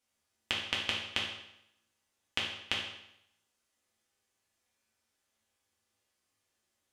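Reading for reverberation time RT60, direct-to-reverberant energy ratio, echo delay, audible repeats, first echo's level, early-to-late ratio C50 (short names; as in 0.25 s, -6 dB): 0.80 s, -4.5 dB, none, none, none, 3.5 dB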